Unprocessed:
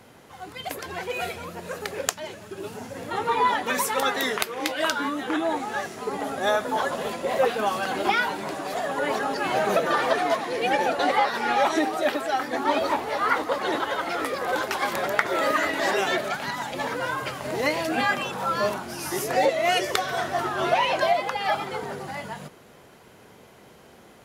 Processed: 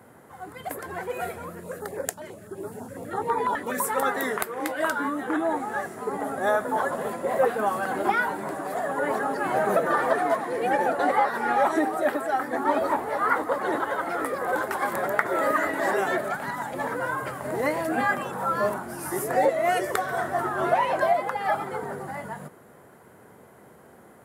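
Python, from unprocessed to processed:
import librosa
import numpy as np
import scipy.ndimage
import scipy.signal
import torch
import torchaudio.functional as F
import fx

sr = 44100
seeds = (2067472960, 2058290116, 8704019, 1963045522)

y = scipy.signal.sosfilt(scipy.signal.butter(2, 73.0, 'highpass', fs=sr, output='sos'), x)
y = fx.band_shelf(y, sr, hz=3900.0, db=-12.5, octaves=1.7)
y = fx.filter_held_notch(y, sr, hz=12.0, low_hz=800.0, high_hz=2900.0, at=(1.55, 3.84))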